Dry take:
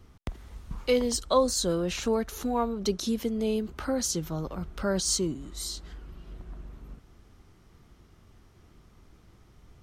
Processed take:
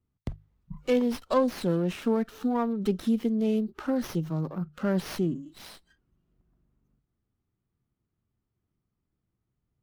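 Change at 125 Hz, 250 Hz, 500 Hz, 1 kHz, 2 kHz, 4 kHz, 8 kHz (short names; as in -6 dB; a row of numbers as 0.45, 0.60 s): +3.5, +3.5, -1.0, -1.5, -1.0, -10.0, -17.5 dB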